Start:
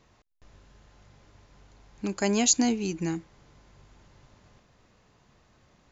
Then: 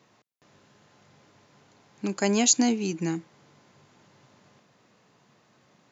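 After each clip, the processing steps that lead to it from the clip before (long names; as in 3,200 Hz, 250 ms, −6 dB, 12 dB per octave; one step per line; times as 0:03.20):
high-pass filter 130 Hz 24 dB per octave
level +1.5 dB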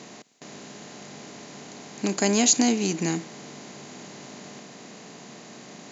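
compressor on every frequency bin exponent 0.6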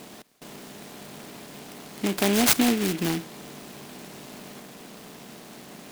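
short delay modulated by noise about 2,300 Hz, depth 0.11 ms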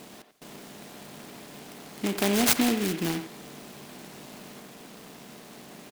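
far-end echo of a speakerphone 90 ms, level −9 dB
level −2.5 dB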